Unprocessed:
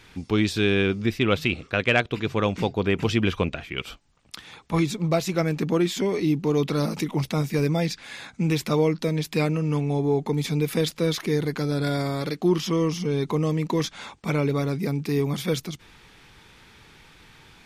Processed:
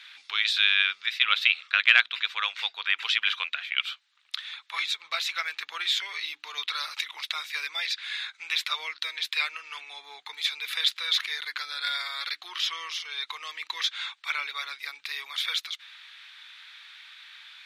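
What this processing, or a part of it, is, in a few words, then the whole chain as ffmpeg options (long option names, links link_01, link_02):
headphones lying on a table: -af "highpass=frequency=1400:width=0.5412,highpass=frequency=1400:width=1.3066,bass=frequency=250:gain=9,treble=frequency=4000:gain=-12,equalizer=frequency=3800:width_type=o:width=0.51:gain=11,bandreject=frequency=60:width_type=h:width=6,bandreject=frequency=120:width_type=h:width=6,bandreject=frequency=180:width_type=h:width=6,bandreject=frequency=240:width_type=h:width=6,bandreject=frequency=300:width_type=h:width=6,volume=5dB"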